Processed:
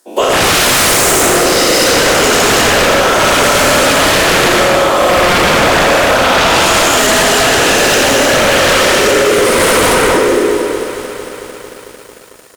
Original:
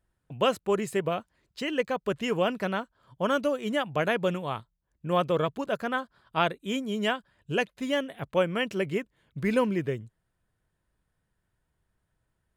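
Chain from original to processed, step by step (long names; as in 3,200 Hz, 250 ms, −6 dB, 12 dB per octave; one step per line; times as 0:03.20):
every bin's largest magnitude spread in time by 480 ms
Butterworth high-pass 260 Hz 48 dB per octave
high shelf with overshoot 3,900 Hz +12 dB, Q 1.5
loudspeakers that aren't time-aligned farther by 29 metres −5 dB, 54 metres −4 dB, 82 metres −10 dB
comb and all-pass reverb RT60 1.2 s, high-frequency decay 0.45×, pre-delay 75 ms, DRR −8 dB
sine wavefolder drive 17 dB, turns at 7.5 dBFS
downward compressor, threshold −6 dBFS, peak gain reduction 11 dB
feedback echo at a low word length 224 ms, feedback 80%, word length 5 bits, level −11.5 dB
level −4 dB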